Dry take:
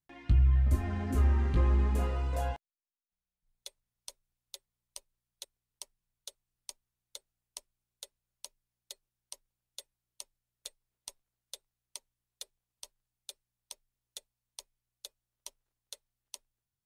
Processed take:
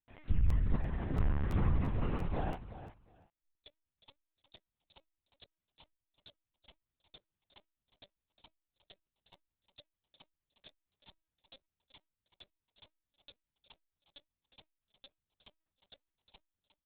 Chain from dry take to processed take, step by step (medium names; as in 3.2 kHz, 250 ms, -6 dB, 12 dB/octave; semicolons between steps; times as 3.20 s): feedback delay 366 ms, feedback 18%, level -13.5 dB; LPC vocoder at 8 kHz pitch kept; crackling interface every 0.34 s, samples 512, repeat, from 0.48 s; trim -4.5 dB